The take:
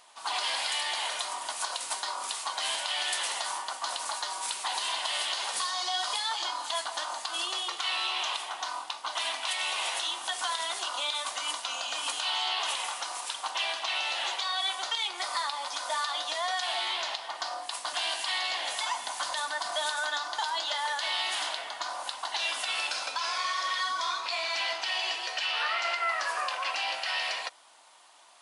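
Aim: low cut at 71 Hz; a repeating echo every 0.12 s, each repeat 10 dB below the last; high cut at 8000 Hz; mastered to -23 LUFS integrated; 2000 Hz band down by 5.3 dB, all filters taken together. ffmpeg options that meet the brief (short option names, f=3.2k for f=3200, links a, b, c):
-af "highpass=71,lowpass=8k,equalizer=f=2k:t=o:g=-7,aecho=1:1:120|240|360|480:0.316|0.101|0.0324|0.0104,volume=9.5dB"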